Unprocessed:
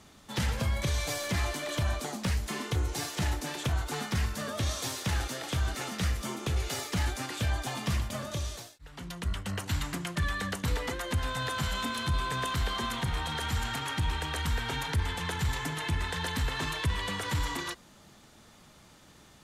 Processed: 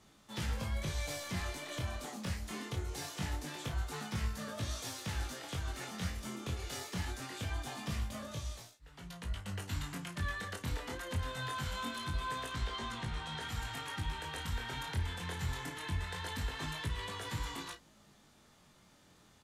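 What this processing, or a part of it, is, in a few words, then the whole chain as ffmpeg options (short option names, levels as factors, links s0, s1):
double-tracked vocal: -filter_complex "[0:a]asettb=1/sr,asplit=3[s0][s1][s2];[s0]atrim=end=12.494[s3];[s1]atrim=start=12.49:end=13.42,asetpts=PTS-STARTPTS,afade=t=in:d=0.004:c=qsin,afade=t=out:st=0.926:d=0.004:c=qsin,lowpass=8100[s4];[s2]atrim=start=13.416[s5];[s3][s4]acrossfade=d=0.004:c1=hsin:c2=qsin[s6];[s6][s5]acrossfade=d=0.004:c1=qsin:c2=hsin,asplit=2[s7][s8];[s8]adelay=33,volume=0.316[s9];[s7][s9]amix=inputs=2:normalize=0,flanger=delay=18:depth=5.5:speed=0.23,volume=0.562"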